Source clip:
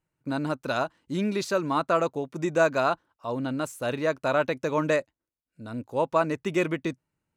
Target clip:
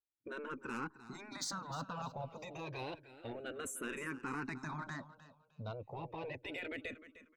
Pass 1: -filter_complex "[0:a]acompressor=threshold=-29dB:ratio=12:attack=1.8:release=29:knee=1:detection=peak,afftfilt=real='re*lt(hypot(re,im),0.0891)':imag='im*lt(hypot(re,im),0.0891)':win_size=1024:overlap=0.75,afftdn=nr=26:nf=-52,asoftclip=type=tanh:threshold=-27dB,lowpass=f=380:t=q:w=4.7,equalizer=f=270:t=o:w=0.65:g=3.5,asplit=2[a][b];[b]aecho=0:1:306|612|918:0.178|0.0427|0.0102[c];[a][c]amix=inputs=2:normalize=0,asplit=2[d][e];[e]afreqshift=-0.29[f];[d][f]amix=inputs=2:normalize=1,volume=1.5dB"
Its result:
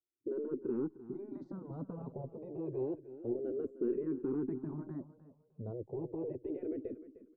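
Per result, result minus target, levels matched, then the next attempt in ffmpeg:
soft clip: distortion -10 dB; 500 Hz band +4.5 dB
-filter_complex "[0:a]acompressor=threshold=-29dB:ratio=12:attack=1.8:release=29:knee=1:detection=peak,afftfilt=real='re*lt(hypot(re,im),0.0891)':imag='im*lt(hypot(re,im),0.0891)':win_size=1024:overlap=0.75,afftdn=nr=26:nf=-52,asoftclip=type=tanh:threshold=-34dB,lowpass=f=380:t=q:w=4.7,equalizer=f=270:t=o:w=0.65:g=3.5,asplit=2[a][b];[b]aecho=0:1:306|612|918:0.178|0.0427|0.0102[c];[a][c]amix=inputs=2:normalize=0,asplit=2[d][e];[e]afreqshift=-0.29[f];[d][f]amix=inputs=2:normalize=1,volume=1.5dB"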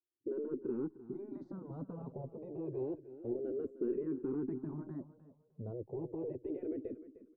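500 Hz band +4.5 dB
-filter_complex "[0:a]acompressor=threshold=-29dB:ratio=12:attack=1.8:release=29:knee=1:detection=peak,afftfilt=real='re*lt(hypot(re,im),0.0891)':imag='im*lt(hypot(re,im),0.0891)':win_size=1024:overlap=0.75,afftdn=nr=26:nf=-52,asoftclip=type=tanh:threshold=-34dB,equalizer=f=270:t=o:w=0.65:g=3.5,asplit=2[a][b];[b]aecho=0:1:306|612|918:0.178|0.0427|0.0102[c];[a][c]amix=inputs=2:normalize=0,asplit=2[d][e];[e]afreqshift=-0.29[f];[d][f]amix=inputs=2:normalize=1,volume=1.5dB"

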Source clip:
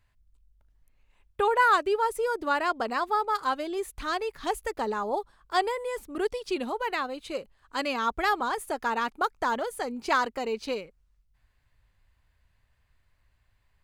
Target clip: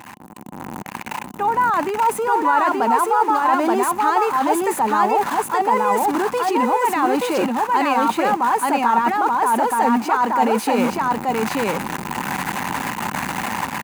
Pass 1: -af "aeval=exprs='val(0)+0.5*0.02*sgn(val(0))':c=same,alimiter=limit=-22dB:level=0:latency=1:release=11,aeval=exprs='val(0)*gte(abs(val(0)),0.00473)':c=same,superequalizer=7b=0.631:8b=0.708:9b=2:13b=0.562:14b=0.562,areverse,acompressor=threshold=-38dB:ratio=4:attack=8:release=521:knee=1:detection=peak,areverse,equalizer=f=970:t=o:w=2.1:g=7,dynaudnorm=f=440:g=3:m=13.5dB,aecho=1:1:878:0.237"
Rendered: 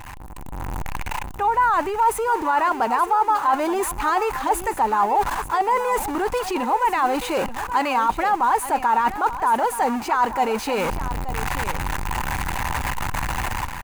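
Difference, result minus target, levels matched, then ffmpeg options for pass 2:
echo-to-direct -11 dB; 250 Hz band -4.0 dB
-af "aeval=exprs='val(0)+0.5*0.02*sgn(val(0))':c=same,alimiter=limit=-22dB:level=0:latency=1:release=11,aeval=exprs='val(0)*gte(abs(val(0)),0.00473)':c=same,superequalizer=7b=0.631:8b=0.708:9b=2:13b=0.562:14b=0.562,areverse,acompressor=threshold=-38dB:ratio=4:attack=8:release=521:knee=1:detection=peak,areverse,highpass=f=210:t=q:w=2.2,equalizer=f=970:t=o:w=2.1:g=7,dynaudnorm=f=440:g=3:m=13.5dB,aecho=1:1:878:0.841"

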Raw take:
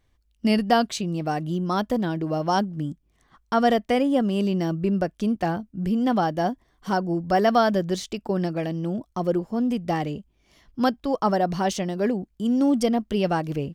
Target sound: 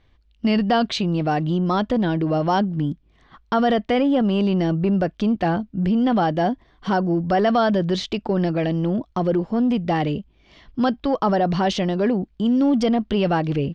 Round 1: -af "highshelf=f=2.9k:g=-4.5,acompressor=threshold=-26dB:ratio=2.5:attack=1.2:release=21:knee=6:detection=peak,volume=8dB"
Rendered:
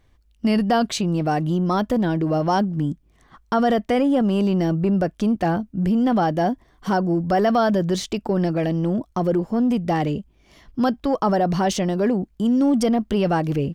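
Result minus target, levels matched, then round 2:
4000 Hz band -2.5 dB
-af "lowpass=f=3.8k:t=q:w=1.5,highshelf=f=2.9k:g=-4.5,acompressor=threshold=-26dB:ratio=2.5:attack=1.2:release=21:knee=6:detection=peak,volume=8dB"

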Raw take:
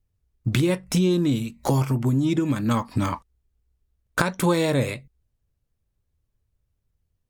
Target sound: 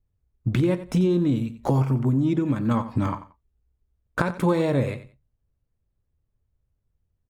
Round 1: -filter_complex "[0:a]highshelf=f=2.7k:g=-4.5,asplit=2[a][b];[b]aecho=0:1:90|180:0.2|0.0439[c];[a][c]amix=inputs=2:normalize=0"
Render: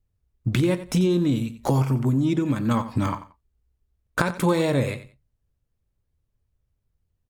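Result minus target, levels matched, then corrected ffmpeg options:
4000 Hz band +6.0 dB
-filter_complex "[0:a]highshelf=f=2.7k:g=-14.5,asplit=2[a][b];[b]aecho=0:1:90|180:0.2|0.0439[c];[a][c]amix=inputs=2:normalize=0"

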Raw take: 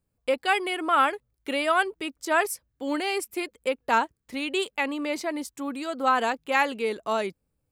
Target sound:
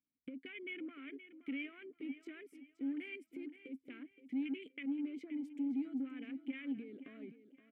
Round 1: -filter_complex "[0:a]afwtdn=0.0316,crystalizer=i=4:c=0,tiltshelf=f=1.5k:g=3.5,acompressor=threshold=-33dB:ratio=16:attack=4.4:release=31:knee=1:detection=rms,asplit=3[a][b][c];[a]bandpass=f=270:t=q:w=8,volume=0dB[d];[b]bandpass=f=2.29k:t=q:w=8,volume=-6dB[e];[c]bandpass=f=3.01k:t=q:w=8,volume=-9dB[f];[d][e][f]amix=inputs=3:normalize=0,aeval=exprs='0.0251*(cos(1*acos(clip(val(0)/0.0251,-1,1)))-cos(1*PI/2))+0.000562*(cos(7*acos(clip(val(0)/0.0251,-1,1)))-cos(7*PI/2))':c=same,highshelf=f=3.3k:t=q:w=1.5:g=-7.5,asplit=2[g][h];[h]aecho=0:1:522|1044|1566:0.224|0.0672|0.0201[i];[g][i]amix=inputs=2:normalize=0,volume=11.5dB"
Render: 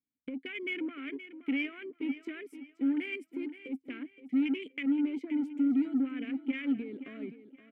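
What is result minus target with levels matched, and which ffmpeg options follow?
compressor: peak gain reduction -9 dB
-filter_complex "[0:a]afwtdn=0.0316,crystalizer=i=4:c=0,tiltshelf=f=1.5k:g=3.5,acompressor=threshold=-42.5dB:ratio=16:attack=4.4:release=31:knee=1:detection=rms,asplit=3[a][b][c];[a]bandpass=f=270:t=q:w=8,volume=0dB[d];[b]bandpass=f=2.29k:t=q:w=8,volume=-6dB[e];[c]bandpass=f=3.01k:t=q:w=8,volume=-9dB[f];[d][e][f]amix=inputs=3:normalize=0,aeval=exprs='0.0251*(cos(1*acos(clip(val(0)/0.0251,-1,1)))-cos(1*PI/2))+0.000562*(cos(7*acos(clip(val(0)/0.0251,-1,1)))-cos(7*PI/2))':c=same,highshelf=f=3.3k:t=q:w=1.5:g=-7.5,asplit=2[g][h];[h]aecho=0:1:522|1044|1566:0.224|0.0672|0.0201[i];[g][i]amix=inputs=2:normalize=0,volume=11.5dB"

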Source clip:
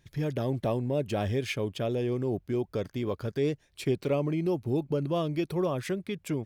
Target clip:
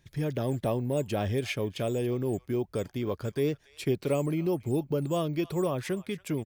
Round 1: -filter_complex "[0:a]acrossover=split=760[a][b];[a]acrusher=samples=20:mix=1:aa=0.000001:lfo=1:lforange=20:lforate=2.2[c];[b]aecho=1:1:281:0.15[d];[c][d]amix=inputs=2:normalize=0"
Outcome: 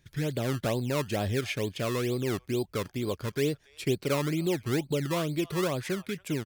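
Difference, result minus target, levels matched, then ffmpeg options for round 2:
decimation with a swept rate: distortion +16 dB
-filter_complex "[0:a]acrossover=split=760[a][b];[a]acrusher=samples=4:mix=1:aa=0.000001:lfo=1:lforange=4:lforate=2.2[c];[b]aecho=1:1:281:0.15[d];[c][d]amix=inputs=2:normalize=0"

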